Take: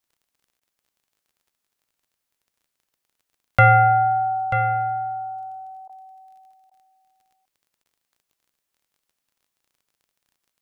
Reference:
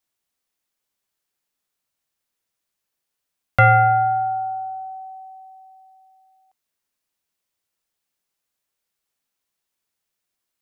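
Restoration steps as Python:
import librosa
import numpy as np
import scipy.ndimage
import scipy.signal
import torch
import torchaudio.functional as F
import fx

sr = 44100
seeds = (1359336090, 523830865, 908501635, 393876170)

y = fx.fix_declick_ar(x, sr, threshold=6.5)
y = fx.fix_interpolate(y, sr, at_s=(0.6, 5.88, 6.7, 7.84), length_ms=12.0)
y = fx.fix_echo_inverse(y, sr, delay_ms=938, level_db=-10.0)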